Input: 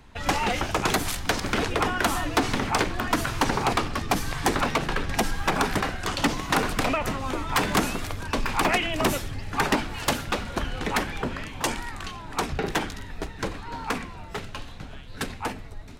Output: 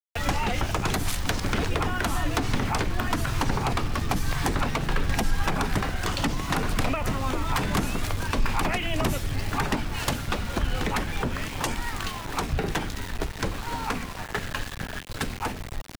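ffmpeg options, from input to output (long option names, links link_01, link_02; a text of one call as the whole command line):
ffmpeg -i in.wav -filter_complex "[0:a]aeval=exprs='val(0)*gte(abs(val(0)),0.0141)':channel_layout=same,acrossover=split=160[link_01][link_02];[link_02]acompressor=threshold=-34dB:ratio=3[link_03];[link_01][link_03]amix=inputs=2:normalize=0,asettb=1/sr,asplit=3[link_04][link_05][link_06];[link_04]atrim=end=14.174[link_07];[link_05]atrim=start=14.17:end=15.04,asetpts=PTS-STARTPTS,afade=type=in:duration=0.004:curve=qsin,afade=type=out:start_time=0.866:duration=0.004:curve=qsin,equalizer=frequency=1700:width_type=o:width=0.24:gain=10[link_08];[link_06]atrim=start=15.036[link_09];[link_07][link_08]acrossfade=duration=0.004:curve1=hsin:curve2=qsin[link_10];[link_10][link_09]acrossfade=duration=0.004:curve1=qsin:curve2=hsin,volume=5.5dB" out.wav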